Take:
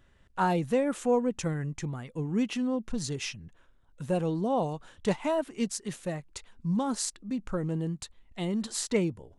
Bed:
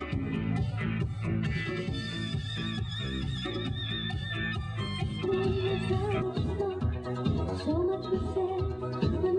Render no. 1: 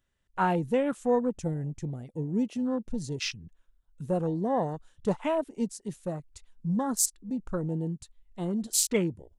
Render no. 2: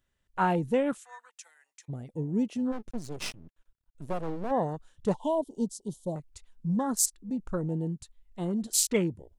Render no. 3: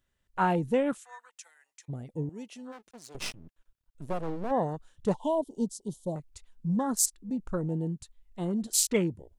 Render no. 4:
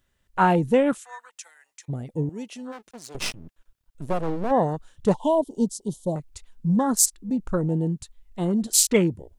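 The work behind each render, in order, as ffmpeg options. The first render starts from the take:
-af "afwtdn=0.0126,highshelf=f=4100:g=12"
-filter_complex "[0:a]asplit=3[s0][s1][s2];[s0]afade=t=out:st=0.97:d=0.02[s3];[s1]highpass=f=1400:w=0.5412,highpass=f=1400:w=1.3066,afade=t=in:st=0.97:d=0.02,afade=t=out:st=1.88:d=0.02[s4];[s2]afade=t=in:st=1.88:d=0.02[s5];[s3][s4][s5]amix=inputs=3:normalize=0,asplit=3[s6][s7][s8];[s6]afade=t=out:st=2.71:d=0.02[s9];[s7]aeval=exprs='max(val(0),0)':c=same,afade=t=in:st=2.71:d=0.02,afade=t=out:st=4.5:d=0.02[s10];[s8]afade=t=in:st=4.5:d=0.02[s11];[s9][s10][s11]amix=inputs=3:normalize=0,asettb=1/sr,asplit=3[s12][s13][s14];[s12]atrim=end=5.144[s15];[s13]atrim=start=5.14:end=6.16,asetpts=PTS-STARTPTS,afade=t=in:d=0.004:c=qsin,afade=t=out:st=1.016:d=0.004:c=qsin,asuperstop=centerf=1800:order=20:qfactor=0.91[s16];[s14]atrim=start=6.156[s17];[s15][s16]acrossfade=d=0.004:c1=hsin:c2=qsin[s18];[s18][s17]acrossfade=d=0.004:c1=qsin:c2=hsin"
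-filter_complex "[0:a]asettb=1/sr,asplit=3[s0][s1][s2];[s0]atrim=end=2.294[s3];[s1]atrim=start=2.29:end=3.15,asetpts=PTS-STARTPTS,afade=t=in:d=0.004:c=qsin,afade=t=out:st=0.856:d=0.004:c=qsin,highpass=f=1400:p=1[s4];[s2]atrim=start=3.146[s5];[s3][s4]acrossfade=d=0.004:c1=hsin:c2=qsin[s6];[s6][s5]acrossfade=d=0.004:c1=qsin:c2=hsin"
-af "volume=2.24,alimiter=limit=0.794:level=0:latency=1"

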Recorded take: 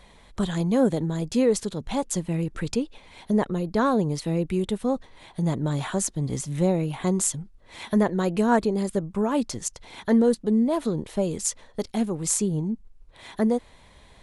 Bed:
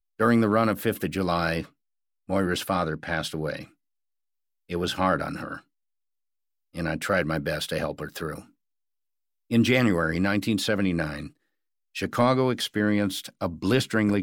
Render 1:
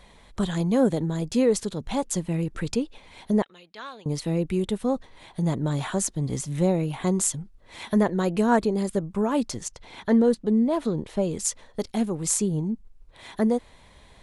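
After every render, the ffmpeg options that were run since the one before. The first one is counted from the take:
-filter_complex "[0:a]asettb=1/sr,asplit=3[s0][s1][s2];[s0]atrim=end=3.424[s3];[s1]atrim=start=3.42:end=4.06,asetpts=PTS-STARTPTS,afade=t=in:d=0.004:c=qsin,afade=t=out:st=0.636:d=0.004:c=qsin,bandpass=f=3000:t=q:w=2[s4];[s2]atrim=start=4.056[s5];[s3][s4]acrossfade=d=0.004:c1=hsin:c2=qsin[s6];[s6][s5]acrossfade=d=0.004:c1=qsin:c2=hsin,asettb=1/sr,asplit=3[s7][s8][s9];[s7]atrim=end=9.634[s10];[s8]atrim=start=9.63:end=11.37,asetpts=PTS-STARTPTS,afade=t=in:d=0.004:c=qsin,afade=t=out:st=1.736:d=0.004:c=qsin,highshelf=f=8600:g=-10.5[s11];[s9]atrim=start=11.366[s12];[s10][s11]acrossfade=d=0.004:c1=hsin:c2=qsin[s13];[s13][s12]acrossfade=d=0.004:c1=qsin:c2=hsin"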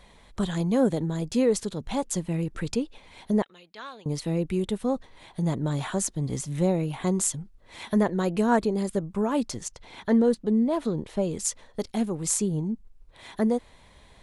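-af "volume=0.841"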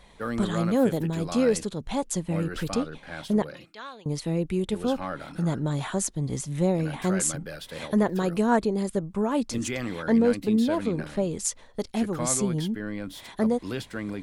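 -filter_complex "[1:a]volume=0.299[s0];[0:a][s0]amix=inputs=2:normalize=0"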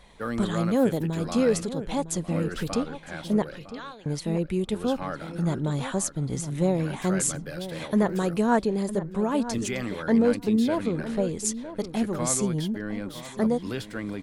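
-filter_complex "[0:a]asplit=2[s0][s1];[s1]adelay=957,lowpass=f=2400:p=1,volume=0.237,asplit=2[s2][s3];[s3]adelay=957,lowpass=f=2400:p=1,volume=0.16[s4];[s0][s2][s4]amix=inputs=3:normalize=0"

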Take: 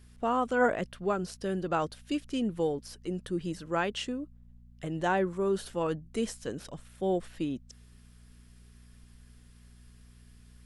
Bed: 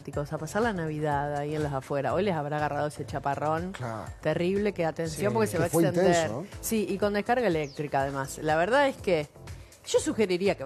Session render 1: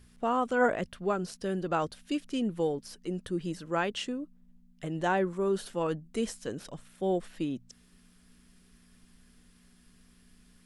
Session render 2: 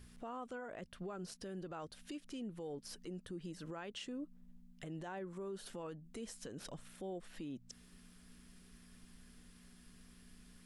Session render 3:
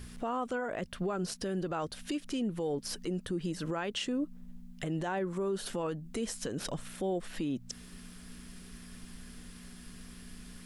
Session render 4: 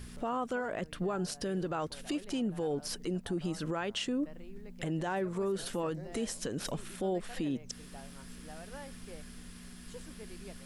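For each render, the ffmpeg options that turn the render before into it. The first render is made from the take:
-af "bandreject=f=60:t=h:w=4,bandreject=f=120:t=h:w=4"
-af "acompressor=threshold=0.01:ratio=2.5,alimiter=level_in=4.47:limit=0.0631:level=0:latency=1:release=154,volume=0.224"
-af "volume=3.76"
-filter_complex "[1:a]volume=0.0562[s0];[0:a][s0]amix=inputs=2:normalize=0"

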